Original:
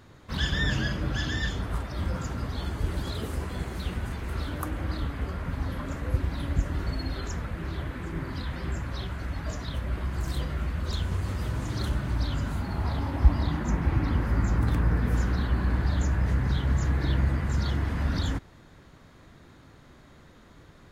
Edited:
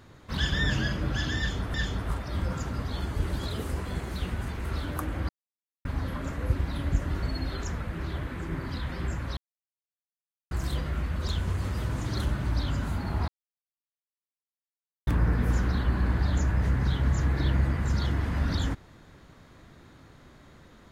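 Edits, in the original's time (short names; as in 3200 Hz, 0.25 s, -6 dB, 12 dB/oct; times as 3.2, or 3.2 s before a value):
1.38–1.74 loop, 2 plays
4.93–5.49 mute
9.01–10.15 mute
12.92–14.71 mute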